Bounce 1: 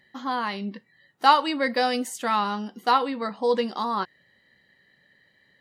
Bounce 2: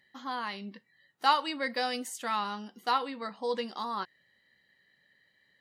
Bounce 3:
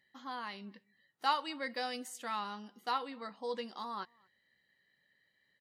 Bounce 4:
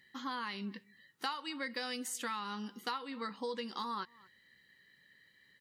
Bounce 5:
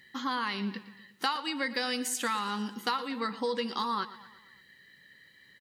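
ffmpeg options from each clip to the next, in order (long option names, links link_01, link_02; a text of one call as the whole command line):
ffmpeg -i in.wav -af "tiltshelf=frequency=1100:gain=-3,volume=-7.5dB" out.wav
ffmpeg -i in.wav -filter_complex "[0:a]asplit=2[link_01][link_02];[link_02]adelay=233.2,volume=-29dB,highshelf=frequency=4000:gain=-5.25[link_03];[link_01][link_03]amix=inputs=2:normalize=0,volume=-6.5dB" out.wav
ffmpeg -i in.wav -af "equalizer=frequency=670:width_type=o:width=0.46:gain=-14.5,acompressor=threshold=-45dB:ratio=8,volume=9.5dB" out.wav
ffmpeg -i in.wav -af "aecho=1:1:116|232|348|464|580:0.158|0.0856|0.0462|0.025|0.0135,volume=7.5dB" out.wav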